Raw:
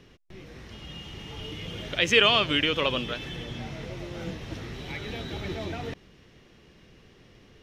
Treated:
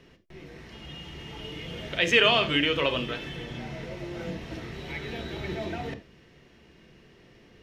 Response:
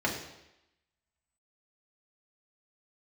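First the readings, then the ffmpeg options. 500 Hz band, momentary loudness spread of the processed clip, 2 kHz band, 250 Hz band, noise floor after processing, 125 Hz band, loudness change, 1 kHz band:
+0.5 dB, 21 LU, +0.5 dB, +0.5 dB, -56 dBFS, -1.0 dB, -0.5 dB, -0.5 dB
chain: -filter_complex "[0:a]asplit=2[a][b];[1:a]atrim=start_sample=2205,afade=t=out:st=0.14:d=0.01,atrim=end_sample=6615[c];[b][c]afir=irnorm=-1:irlink=0,volume=-10dB[d];[a][d]amix=inputs=2:normalize=0,volume=-4dB"

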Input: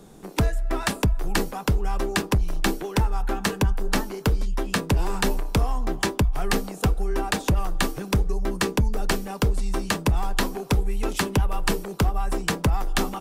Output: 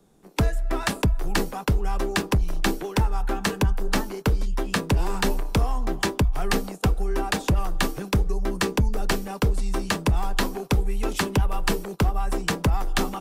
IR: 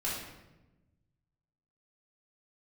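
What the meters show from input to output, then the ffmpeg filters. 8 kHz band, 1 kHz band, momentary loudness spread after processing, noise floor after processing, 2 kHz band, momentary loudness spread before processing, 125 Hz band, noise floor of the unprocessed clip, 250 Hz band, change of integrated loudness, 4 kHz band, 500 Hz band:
-1.0 dB, 0.0 dB, 3 LU, -42 dBFS, 0.0 dB, 3 LU, 0.0 dB, -40 dBFS, 0.0 dB, 0.0 dB, 0.0 dB, 0.0 dB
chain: -filter_complex "[0:a]agate=range=-12dB:threshold=-34dB:ratio=16:detection=peak,acrossover=split=280|830|7700[a][b][c][d];[d]asoftclip=type=tanh:threshold=-29dB[e];[a][b][c][e]amix=inputs=4:normalize=0"

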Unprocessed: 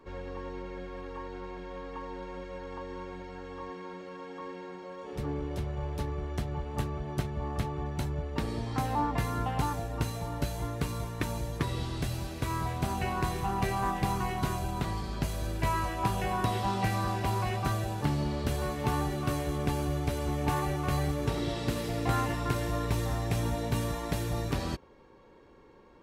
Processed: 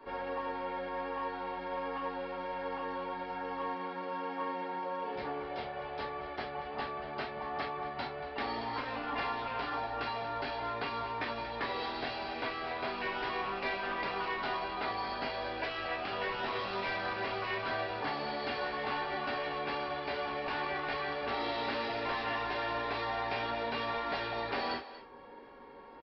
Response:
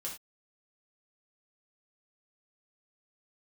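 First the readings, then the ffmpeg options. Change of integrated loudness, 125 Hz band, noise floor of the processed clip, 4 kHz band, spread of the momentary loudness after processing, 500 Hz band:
-3.5 dB, -19.5 dB, -45 dBFS, +1.5 dB, 5 LU, -1.0 dB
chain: -filter_complex "[0:a]acrossover=split=360[a][b];[a]acompressor=threshold=-45dB:ratio=10[c];[b]aecho=1:1:234:0.158[d];[c][d]amix=inputs=2:normalize=0,asplit=2[e][f];[f]highpass=f=720:p=1,volume=15dB,asoftclip=type=tanh:threshold=-17.5dB[g];[e][g]amix=inputs=2:normalize=0,lowpass=f=2k:p=1,volume=-6dB[h];[1:a]atrim=start_sample=2205,asetrate=66150,aresample=44100[i];[h][i]afir=irnorm=-1:irlink=0,aresample=11025,asoftclip=type=tanh:threshold=-28dB,aresample=44100,afftfilt=real='re*lt(hypot(re,im),0.1)':imag='im*lt(hypot(re,im),0.1)':win_size=1024:overlap=0.75,volume=4dB"

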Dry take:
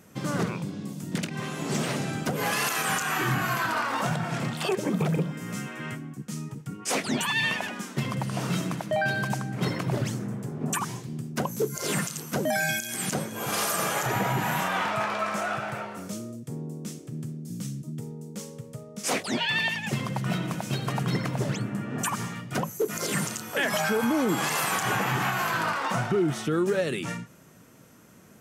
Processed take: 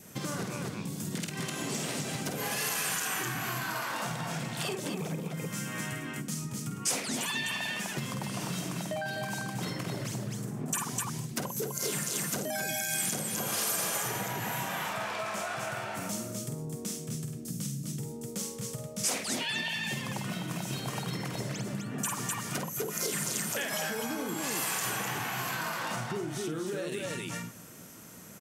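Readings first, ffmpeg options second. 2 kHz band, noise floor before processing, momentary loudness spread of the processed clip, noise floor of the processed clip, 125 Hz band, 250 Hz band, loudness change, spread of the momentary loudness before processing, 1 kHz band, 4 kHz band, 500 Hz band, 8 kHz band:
-6.0 dB, -47 dBFS, 7 LU, -42 dBFS, -6.5 dB, -6.5 dB, -4.5 dB, 11 LU, -7.5 dB, -2.5 dB, -7.0 dB, +1.0 dB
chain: -af "adynamicequalizer=threshold=0.00501:dfrequency=1300:dqfactor=4.7:tfrequency=1300:tqfactor=4.7:attack=5:release=100:ratio=0.375:range=2:mode=cutabove:tftype=bell,aecho=1:1:49.56|253.6:0.562|0.631,acompressor=threshold=-33dB:ratio=6,highshelf=f=3.9k:g=9"

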